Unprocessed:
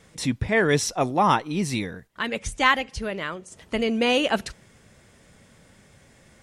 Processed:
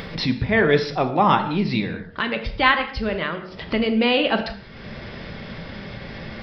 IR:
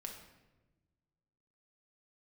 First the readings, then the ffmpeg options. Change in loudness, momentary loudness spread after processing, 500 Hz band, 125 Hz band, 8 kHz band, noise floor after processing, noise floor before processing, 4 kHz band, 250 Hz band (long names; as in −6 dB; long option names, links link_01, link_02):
+3.0 dB, 17 LU, +3.0 dB, +3.5 dB, below −15 dB, −40 dBFS, −56 dBFS, +3.0 dB, +4.0 dB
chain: -filter_complex "[0:a]aresample=11025,aresample=44100,acompressor=mode=upward:threshold=-22dB:ratio=2.5,bandreject=frequency=91.77:width_type=h:width=4,bandreject=frequency=183.54:width_type=h:width=4,bandreject=frequency=275.31:width_type=h:width=4,bandreject=frequency=367.08:width_type=h:width=4,bandreject=frequency=458.85:width_type=h:width=4,bandreject=frequency=550.62:width_type=h:width=4,bandreject=frequency=642.39:width_type=h:width=4,bandreject=frequency=734.16:width_type=h:width=4,bandreject=frequency=825.93:width_type=h:width=4,bandreject=frequency=917.7:width_type=h:width=4,bandreject=frequency=1009.47:width_type=h:width=4,bandreject=frequency=1101.24:width_type=h:width=4,bandreject=frequency=1193.01:width_type=h:width=4,bandreject=frequency=1284.78:width_type=h:width=4,bandreject=frequency=1376.55:width_type=h:width=4,bandreject=frequency=1468.32:width_type=h:width=4,bandreject=frequency=1560.09:width_type=h:width=4,bandreject=frequency=1651.86:width_type=h:width=4,bandreject=frequency=1743.63:width_type=h:width=4,bandreject=frequency=1835.4:width_type=h:width=4,asplit=2[link_01][link_02];[1:a]atrim=start_sample=2205,afade=type=out:start_time=0.26:duration=0.01,atrim=end_sample=11907[link_03];[link_02][link_03]afir=irnorm=-1:irlink=0,volume=5dB[link_04];[link_01][link_04]amix=inputs=2:normalize=0,volume=-3.5dB"